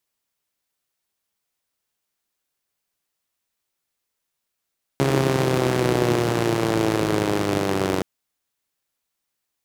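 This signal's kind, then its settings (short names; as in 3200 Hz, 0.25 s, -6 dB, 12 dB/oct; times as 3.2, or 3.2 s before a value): four-cylinder engine model, changing speed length 3.02 s, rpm 4100, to 2800, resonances 160/330 Hz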